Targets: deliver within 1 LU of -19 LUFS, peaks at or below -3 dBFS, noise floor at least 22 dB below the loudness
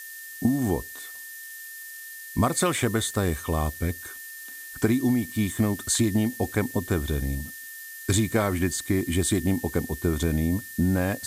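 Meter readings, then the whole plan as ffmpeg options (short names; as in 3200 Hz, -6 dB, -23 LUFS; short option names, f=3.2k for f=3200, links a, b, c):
steady tone 1800 Hz; tone level -41 dBFS; noise floor -41 dBFS; noise floor target -48 dBFS; loudness -26.0 LUFS; peak -9.0 dBFS; loudness target -19.0 LUFS
-> -af "bandreject=f=1.8k:w=30"
-af "afftdn=nr=7:nf=-41"
-af "volume=7dB,alimiter=limit=-3dB:level=0:latency=1"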